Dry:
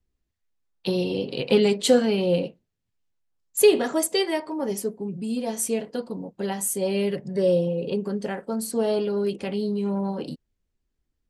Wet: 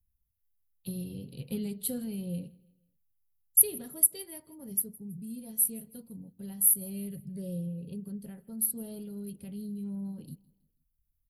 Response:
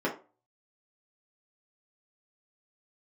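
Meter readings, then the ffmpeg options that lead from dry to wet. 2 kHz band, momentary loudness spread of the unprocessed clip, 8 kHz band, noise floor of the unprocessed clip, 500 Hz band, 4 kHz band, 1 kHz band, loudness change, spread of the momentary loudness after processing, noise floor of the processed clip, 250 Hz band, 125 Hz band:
below −20 dB, 12 LU, +2.5 dB, −78 dBFS, −23.5 dB, −21.0 dB, below −25 dB, −5.0 dB, 20 LU, −77 dBFS, −11.0 dB, −8.0 dB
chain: -af "firequalizer=gain_entry='entry(110,0);entry(330,-21);entry(870,-28);entry(4200,-18);entry(6600,-25);entry(11000,11)':delay=0.05:min_phase=1,aecho=1:1:162|324|486:0.0668|0.0274|0.0112,volume=-1dB"

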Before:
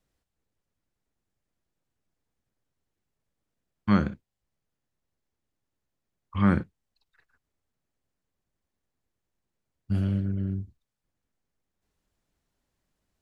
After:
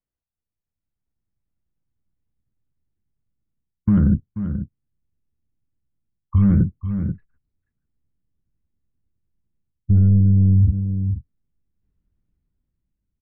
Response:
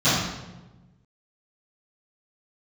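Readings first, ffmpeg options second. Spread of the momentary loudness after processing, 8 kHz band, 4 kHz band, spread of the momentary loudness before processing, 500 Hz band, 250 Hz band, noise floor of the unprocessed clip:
14 LU, can't be measured, below −15 dB, 13 LU, −1.0 dB, +8.0 dB, −84 dBFS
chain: -af "dynaudnorm=framelen=160:gausssize=11:maxgain=8dB,lowpass=2300,aresample=16000,asoftclip=type=tanh:threshold=-15dB,aresample=44100,afftdn=noise_reduction=31:noise_floor=-39,areverse,acompressor=threshold=-37dB:ratio=5,areverse,bandreject=frequency=1700:width=28,asubboost=boost=7.5:cutoff=240,aecho=1:1:484:0.15,alimiter=level_in=24.5dB:limit=-1dB:release=50:level=0:latency=1,volume=-8dB"

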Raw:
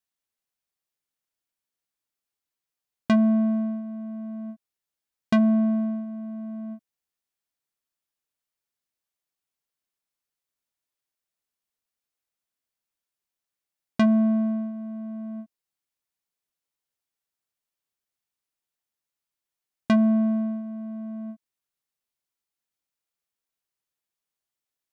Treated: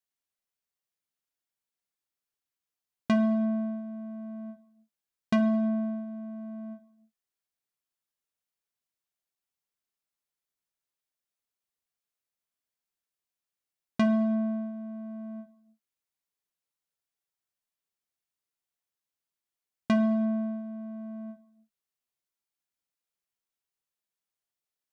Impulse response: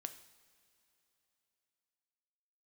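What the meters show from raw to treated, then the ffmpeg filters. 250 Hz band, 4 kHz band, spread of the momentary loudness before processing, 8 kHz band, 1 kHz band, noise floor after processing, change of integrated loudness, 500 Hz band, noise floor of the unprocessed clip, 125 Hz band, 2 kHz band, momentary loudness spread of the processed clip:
−5.0 dB, −3.5 dB, 17 LU, can't be measured, −2.5 dB, below −85 dBFS, −5.0 dB, −1.5 dB, below −85 dBFS, −5.0 dB, −3.0 dB, 17 LU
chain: -filter_complex "[1:a]atrim=start_sample=2205,afade=type=out:start_time=0.39:duration=0.01,atrim=end_sample=17640[link_01];[0:a][link_01]afir=irnorm=-1:irlink=0"

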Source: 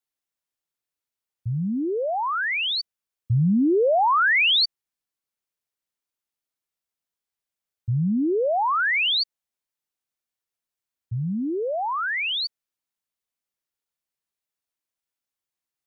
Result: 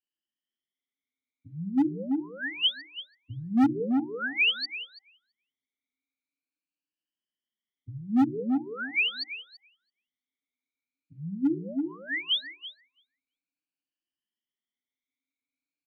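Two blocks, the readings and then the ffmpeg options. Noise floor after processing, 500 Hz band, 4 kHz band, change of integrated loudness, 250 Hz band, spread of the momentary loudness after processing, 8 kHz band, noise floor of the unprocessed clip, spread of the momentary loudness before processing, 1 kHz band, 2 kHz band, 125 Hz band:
below −85 dBFS, −13.5 dB, −5.5 dB, −6.0 dB, −1.0 dB, 18 LU, can't be measured, below −85 dBFS, 12 LU, −16.0 dB, −7.5 dB, −14.0 dB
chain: -filter_complex "[0:a]afftfilt=real='re*pow(10,24/40*sin(2*PI*(1.3*log(max(b,1)*sr/1024/100)/log(2)-(0.43)*(pts-256)/sr)))':imag='im*pow(10,24/40*sin(2*PI*(1.3*log(max(b,1)*sr/1024/100)/log(2)-(0.43)*(pts-256)/sr)))':win_size=1024:overlap=0.75,bandreject=frequency=60:width_type=h:width=6,bandreject=frequency=120:width_type=h:width=6,bandreject=frequency=180:width_type=h:width=6,bandreject=frequency=240:width_type=h:width=6,bandreject=frequency=300:width_type=h:width=6,bandreject=frequency=360:width_type=h:width=6,bandreject=frequency=420:width_type=h:width=6,asplit=2[link_01][link_02];[link_02]acompressor=threshold=-26dB:ratio=12,volume=-2.5dB[link_03];[link_01][link_03]amix=inputs=2:normalize=0,asplit=3[link_04][link_05][link_06];[link_04]bandpass=frequency=270:width_type=q:width=8,volume=0dB[link_07];[link_05]bandpass=frequency=2290:width_type=q:width=8,volume=-6dB[link_08];[link_06]bandpass=frequency=3010:width_type=q:width=8,volume=-9dB[link_09];[link_07][link_08][link_09]amix=inputs=3:normalize=0,acrossover=split=490[link_10][link_11];[link_10]asoftclip=type=hard:threshold=-19dB[link_12];[link_12][link_11]amix=inputs=2:normalize=0,asplit=2[link_13][link_14];[link_14]adelay=333,lowpass=frequency=880:poles=1,volume=-4dB,asplit=2[link_15][link_16];[link_16]adelay=333,lowpass=frequency=880:poles=1,volume=0.18,asplit=2[link_17][link_18];[link_18]adelay=333,lowpass=frequency=880:poles=1,volume=0.18[link_19];[link_13][link_15][link_17][link_19]amix=inputs=4:normalize=0"

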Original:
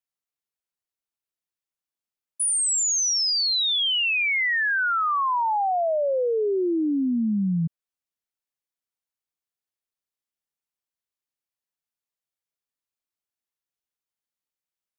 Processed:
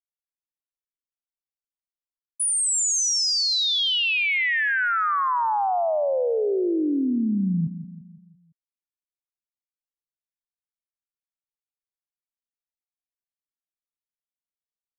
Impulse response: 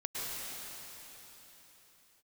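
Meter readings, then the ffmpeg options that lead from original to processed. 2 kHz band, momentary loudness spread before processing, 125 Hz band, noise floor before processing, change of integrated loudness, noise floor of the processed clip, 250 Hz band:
+0.5 dB, 4 LU, +0.5 dB, below −85 dBFS, +0.5 dB, below −85 dBFS, +0.5 dB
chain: -af "anlmdn=0.398,aecho=1:1:170|340|510|680|850:0.251|0.126|0.0628|0.0314|0.0157"

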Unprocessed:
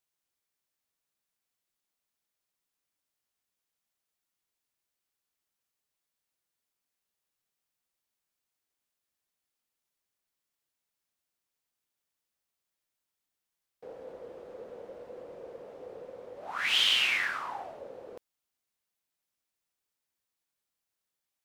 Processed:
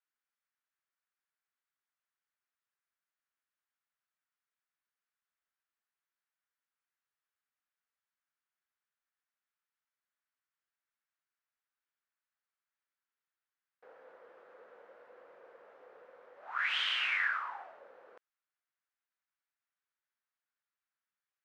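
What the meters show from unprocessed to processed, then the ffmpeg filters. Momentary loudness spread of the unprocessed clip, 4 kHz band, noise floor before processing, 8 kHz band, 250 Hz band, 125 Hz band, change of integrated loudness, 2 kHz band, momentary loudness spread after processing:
23 LU, −9.0 dB, below −85 dBFS, below −15 dB, below −15 dB, below −20 dB, −5.5 dB, −2.5 dB, 13 LU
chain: -af "bandpass=frequency=1500:width_type=q:width=2.1:csg=0,volume=2dB"

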